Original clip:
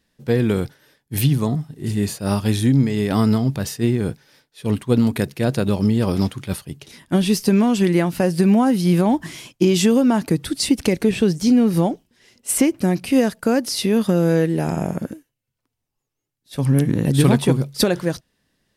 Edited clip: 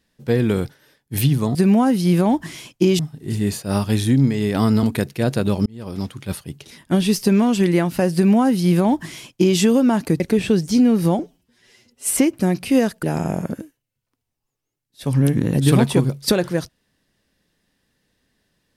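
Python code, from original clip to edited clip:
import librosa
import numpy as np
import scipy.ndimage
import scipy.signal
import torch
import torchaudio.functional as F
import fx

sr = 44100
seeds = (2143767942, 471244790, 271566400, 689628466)

y = fx.edit(x, sr, fx.cut(start_s=3.39, length_s=1.65),
    fx.fade_in_span(start_s=5.87, length_s=0.76),
    fx.duplicate(start_s=8.35, length_s=1.44, to_s=1.55),
    fx.cut(start_s=10.41, length_s=0.51),
    fx.stretch_span(start_s=11.91, length_s=0.62, factor=1.5),
    fx.cut(start_s=13.44, length_s=1.11), tone=tone)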